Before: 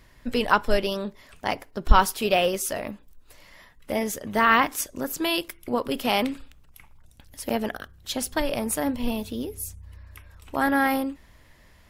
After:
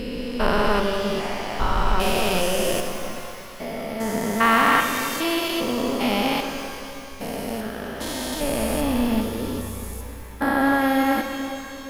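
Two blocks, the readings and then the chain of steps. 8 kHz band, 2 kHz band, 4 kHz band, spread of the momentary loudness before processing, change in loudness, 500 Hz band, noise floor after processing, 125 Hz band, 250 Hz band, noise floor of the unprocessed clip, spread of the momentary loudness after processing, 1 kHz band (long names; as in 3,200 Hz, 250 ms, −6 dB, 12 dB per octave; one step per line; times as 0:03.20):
+1.0 dB, +3.0 dB, +3.0 dB, 13 LU, +2.0 dB, +3.0 dB, −37 dBFS, +4.0 dB, +4.5 dB, −55 dBFS, 14 LU, +2.0 dB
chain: spectrum averaged block by block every 400 ms
reverb with rising layers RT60 2.6 s, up +12 semitones, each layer −8 dB, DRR 5 dB
level +6.5 dB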